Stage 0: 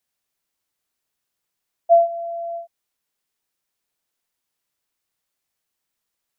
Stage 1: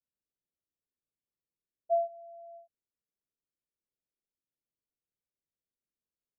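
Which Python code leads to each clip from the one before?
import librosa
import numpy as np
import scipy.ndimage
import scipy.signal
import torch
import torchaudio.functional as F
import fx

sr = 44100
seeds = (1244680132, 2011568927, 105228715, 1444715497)

y = fx.wiener(x, sr, points=41)
y = scipy.signal.sosfilt(scipy.signal.butter(12, 650.0, 'lowpass', fs=sr, output='sos'), y)
y = y * librosa.db_to_amplitude(-8.0)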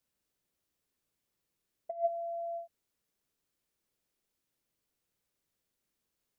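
y = fx.over_compress(x, sr, threshold_db=-35.0, ratio=-0.5)
y = y * librosa.db_to_amplitude(4.5)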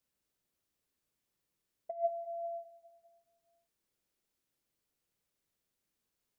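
y = fx.echo_feedback(x, sr, ms=201, feedback_pct=55, wet_db=-15.0)
y = y * librosa.db_to_amplitude(-1.5)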